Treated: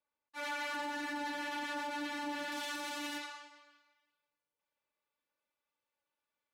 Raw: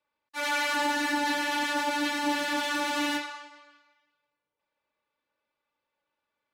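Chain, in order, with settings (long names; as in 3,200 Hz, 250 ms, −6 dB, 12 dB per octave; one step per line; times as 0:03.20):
high-shelf EQ 3,500 Hz −5.5 dB, from 0:02.52 +5.5 dB
brickwall limiter −23.5 dBFS, peak gain reduction 6 dB
level −8.5 dB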